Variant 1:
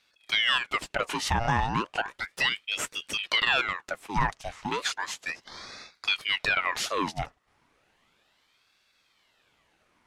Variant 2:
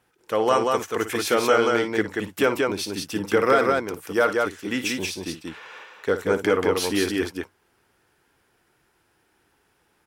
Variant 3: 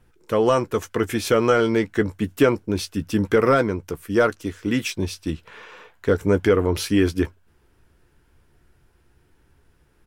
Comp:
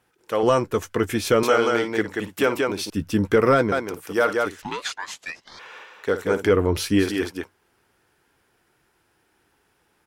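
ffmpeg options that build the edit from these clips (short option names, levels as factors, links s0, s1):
-filter_complex "[2:a]asplit=3[s0][s1][s2];[1:a]asplit=5[s3][s4][s5][s6][s7];[s3]atrim=end=0.432[s8];[s0]atrim=start=0.428:end=1.432[s9];[s4]atrim=start=1.428:end=2.902[s10];[s1]atrim=start=2.898:end=3.722[s11];[s5]atrim=start=3.718:end=4.622[s12];[0:a]atrim=start=4.618:end=5.592[s13];[s6]atrim=start=5.588:end=6.52[s14];[s2]atrim=start=6.42:end=7.08[s15];[s7]atrim=start=6.98[s16];[s8][s9]acrossfade=d=0.004:c1=hsin:c2=hsin[s17];[s17][s10]acrossfade=d=0.004:c1=hsin:c2=hsin[s18];[s18][s11]acrossfade=d=0.004:c1=hsin:c2=hsin[s19];[s19][s12]acrossfade=d=0.004:c1=hsin:c2=hsin[s20];[s20][s13]acrossfade=d=0.004:c1=hsin:c2=hsin[s21];[s21][s14]acrossfade=d=0.004:c1=hsin:c2=hsin[s22];[s22][s15]acrossfade=d=0.1:c1=tri:c2=tri[s23];[s23][s16]acrossfade=d=0.1:c1=tri:c2=tri"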